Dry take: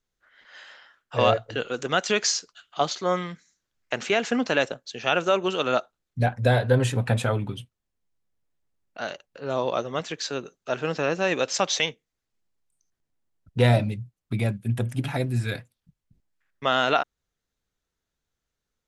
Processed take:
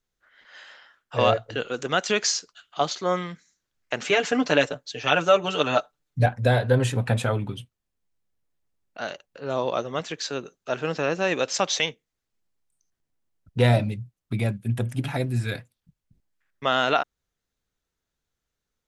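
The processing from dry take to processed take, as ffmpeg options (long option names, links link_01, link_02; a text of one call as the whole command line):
ffmpeg -i in.wav -filter_complex "[0:a]asettb=1/sr,asplit=3[link_01][link_02][link_03];[link_01]atrim=end=4.044[link_04];[link_02]atrim=start=4.04:end=6.26,asetpts=PTS-STARTPTS,afade=type=in:duration=0.004:curve=qsin,afade=type=out:start_time=2.216:duration=0.004:curve=qsin,aecho=1:1:6.8:0.84,atrim=end_sample=97902[link_05];[link_03]atrim=start=6.256[link_06];[link_04][link_05]acrossfade=duration=0.004:curve1=hsin:curve2=qsin[link_07];[link_07][link_06]acrossfade=duration=0.004:curve1=qsin:curve2=hsin" out.wav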